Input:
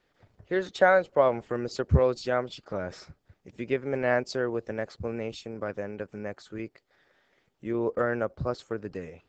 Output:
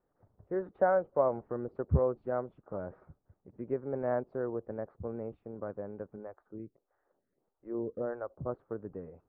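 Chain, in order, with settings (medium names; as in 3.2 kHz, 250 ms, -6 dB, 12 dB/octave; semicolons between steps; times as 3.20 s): low-pass 1.2 kHz 24 dB/octave; 6.16–8.46 s: lamp-driven phase shifter 1.6 Hz; trim -5.5 dB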